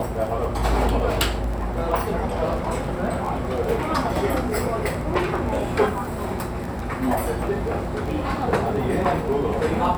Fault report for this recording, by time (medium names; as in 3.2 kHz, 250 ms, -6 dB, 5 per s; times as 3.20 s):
crackle 16 per s -26 dBFS